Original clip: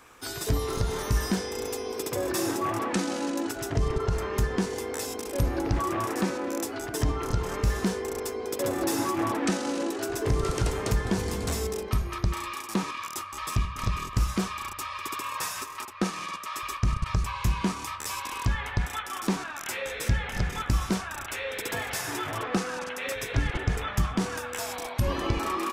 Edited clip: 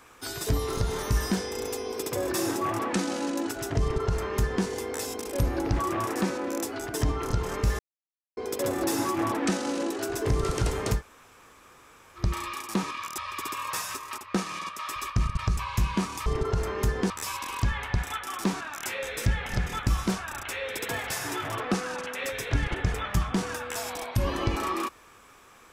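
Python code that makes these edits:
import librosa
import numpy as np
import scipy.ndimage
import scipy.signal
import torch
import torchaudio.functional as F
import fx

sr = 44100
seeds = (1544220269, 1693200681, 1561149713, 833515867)

y = fx.edit(x, sr, fx.duplicate(start_s=3.81, length_s=0.84, to_s=17.93),
    fx.silence(start_s=7.79, length_s=0.58),
    fx.room_tone_fill(start_s=10.98, length_s=1.22, crossfade_s=0.1),
    fx.cut(start_s=13.18, length_s=1.67), tone=tone)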